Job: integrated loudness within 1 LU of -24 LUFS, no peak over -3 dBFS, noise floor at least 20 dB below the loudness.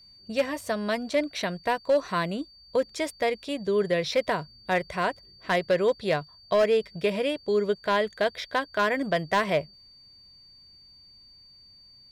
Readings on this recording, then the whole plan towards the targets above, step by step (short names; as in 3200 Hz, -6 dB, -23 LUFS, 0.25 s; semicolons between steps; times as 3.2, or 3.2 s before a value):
clipped 0.4%; flat tops at -16.0 dBFS; steady tone 4600 Hz; tone level -51 dBFS; loudness -27.0 LUFS; peak -16.0 dBFS; loudness target -24.0 LUFS
-> clip repair -16 dBFS; notch 4600 Hz, Q 30; gain +3 dB